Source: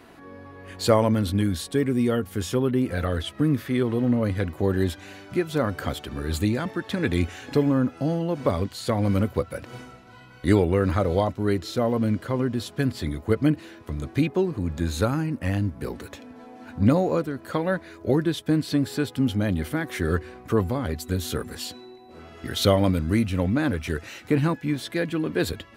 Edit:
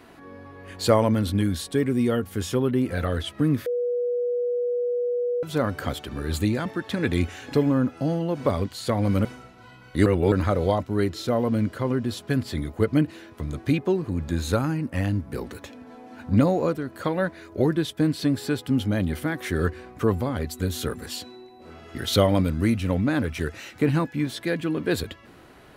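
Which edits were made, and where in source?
3.66–5.43 bleep 486 Hz -22 dBFS
9.25–9.74 cut
10.55–10.81 reverse

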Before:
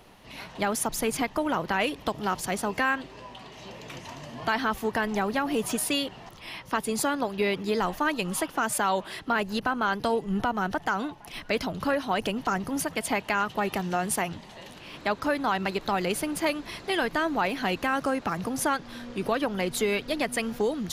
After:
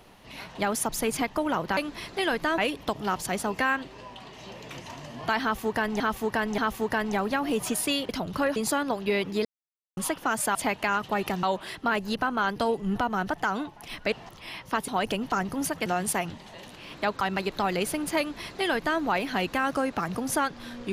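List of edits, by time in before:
4.61–5.19 loop, 3 plays
6.12–6.88 swap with 11.56–12.03
7.77–8.29 mute
13.01–13.89 move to 8.87
15.24–15.5 cut
16.48–17.29 copy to 1.77

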